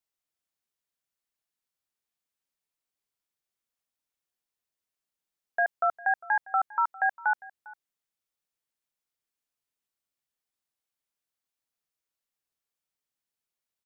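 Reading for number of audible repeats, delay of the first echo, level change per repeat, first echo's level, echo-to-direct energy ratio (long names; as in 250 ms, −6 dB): 1, 402 ms, repeats not evenly spaced, −21.0 dB, −21.0 dB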